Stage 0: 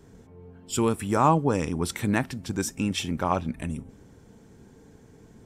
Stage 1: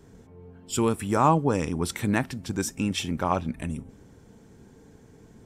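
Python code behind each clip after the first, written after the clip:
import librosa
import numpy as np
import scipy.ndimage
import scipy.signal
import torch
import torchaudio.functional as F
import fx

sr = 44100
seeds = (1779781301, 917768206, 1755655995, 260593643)

y = x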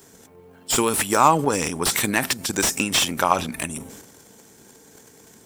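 y = fx.transient(x, sr, attack_db=7, sustain_db=11)
y = fx.riaa(y, sr, side='recording')
y = fx.slew_limit(y, sr, full_power_hz=500.0)
y = y * 10.0 ** (3.5 / 20.0)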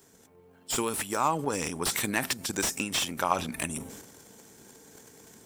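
y = fx.rider(x, sr, range_db=5, speed_s=0.5)
y = y * 10.0 ** (-8.0 / 20.0)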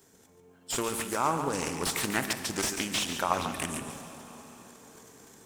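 y = x + 10.0 ** (-8.5 / 20.0) * np.pad(x, (int(142 * sr / 1000.0), 0))[:len(x)]
y = fx.rev_plate(y, sr, seeds[0], rt60_s=4.4, hf_ratio=0.8, predelay_ms=0, drr_db=10.0)
y = fx.doppler_dist(y, sr, depth_ms=0.32)
y = y * 10.0 ** (-1.5 / 20.0)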